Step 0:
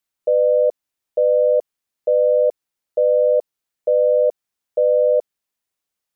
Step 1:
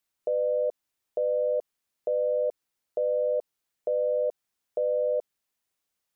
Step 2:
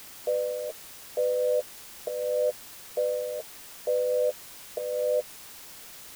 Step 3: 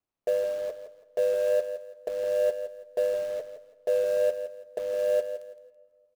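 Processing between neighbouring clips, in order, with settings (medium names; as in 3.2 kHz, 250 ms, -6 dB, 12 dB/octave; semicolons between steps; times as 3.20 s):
peak limiter -20 dBFS, peak gain reduction 11 dB
flange 0.37 Hz, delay 9.7 ms, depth 2.6 ms, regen +18%; in parallel at -9.5 dB: word length cut 6-bit, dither triangular
median filter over 25 samples; feedback delay 165 ms, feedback 28%, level -11 dB; reverberation RT60 2.1 s, pre-delay 4 ms, DRR 20 dB; trim +2 dB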